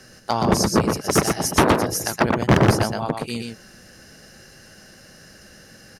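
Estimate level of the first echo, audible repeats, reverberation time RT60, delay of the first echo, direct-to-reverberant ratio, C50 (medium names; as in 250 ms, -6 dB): -4.5 dB, 1, no reverb, 120 ms, no reverb, no reverb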